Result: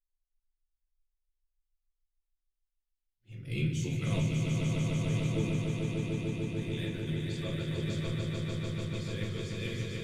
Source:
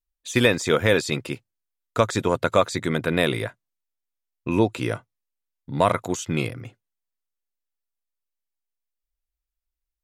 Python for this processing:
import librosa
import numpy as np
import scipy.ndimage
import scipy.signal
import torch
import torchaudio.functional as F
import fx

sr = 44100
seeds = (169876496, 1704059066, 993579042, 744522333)

p1 = np.flip(x).copy()
p2 = fx.doppler_pass(p1, sr, speed_mps=8, closest_m=9.4, pass_at_s=3.37)
p3 = fx.peak_eq(p2, sr, hz=2900.0, db=9.0, octaves=1.4)
p4 = fx.rider(p3, sr, range_db=10, speed_s=0.5)
p5 = p3 + (p4 * 10.0 ** (2.5 / 20.0))
p6 = fx.tone_stack(p5, sr, knobs='10-0-1')
p7 = p6 + fx.echo_swell(p6, sr, ms=148, loudest=5, wet_db=-5.0, dry=0)
p8 = fx.room_shoebox(p7, sr, seeds[0], volume_m3=35.0, walls='mixed', distance_m=0.75)
y = p8 * 10.0 ** (-2.0 / 20.0)